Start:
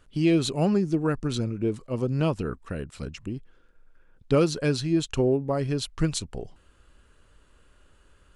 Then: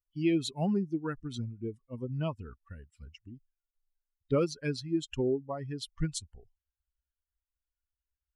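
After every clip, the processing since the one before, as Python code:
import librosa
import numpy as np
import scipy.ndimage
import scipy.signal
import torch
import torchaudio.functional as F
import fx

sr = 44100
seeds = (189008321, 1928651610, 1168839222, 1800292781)

y = fx.bin_expand(x, sr, power=2.0)
y = y * 10.0 ** (-4.0 / 20.0)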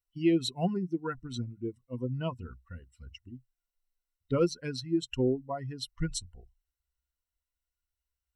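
y = fx.ripple_eq(x, sr, per_octave=2.0, db=10)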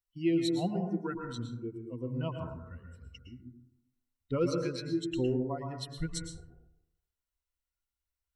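y = fx.rev_plate(x, sr, seeds[0], rt60_s=0.81, hf_ratio=0.3, predelay_ms=100, drr_db=3.0)
y = y * 10.0 ** (-3.5 / 20.0)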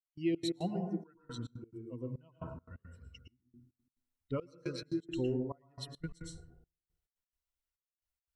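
y = fx.step_gate(x, sr, bpm=174, pattern='..xx.x.xxxxx.', floor_db=-24.0, edge_ms=4.5)
y = y * 10.0 ** (-3.5 / 20.0)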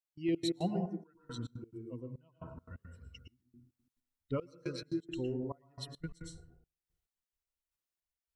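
y = fx.tremolo_random(x, sr, seeds[1], hz=3.5, depth_pct=55)
y = y * 10.0 ** (2.0 / 20.0)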